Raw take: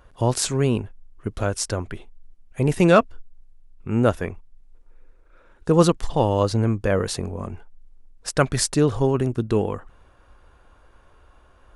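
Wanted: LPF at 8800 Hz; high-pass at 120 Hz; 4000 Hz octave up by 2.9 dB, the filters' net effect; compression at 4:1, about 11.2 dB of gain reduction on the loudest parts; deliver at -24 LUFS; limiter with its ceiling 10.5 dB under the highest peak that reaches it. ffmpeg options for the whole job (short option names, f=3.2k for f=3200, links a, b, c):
-af "highpass=120,lowpass=8.8k,equalizer=f=4k:t=o:g=4,acompressor=threshold=-24dB:ratio=4,volume=8dB,alimiter=limit=-11.5dB:level=0:latency=1"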